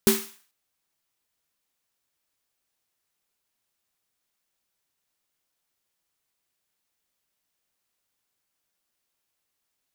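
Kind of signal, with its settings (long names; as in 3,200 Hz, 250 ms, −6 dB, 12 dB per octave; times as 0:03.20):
synth snare length 0.44 s, tones 220 Hz, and 390 Hz, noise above 850 Hz, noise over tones −4 dB, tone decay 0.29 s, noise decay 0.47 s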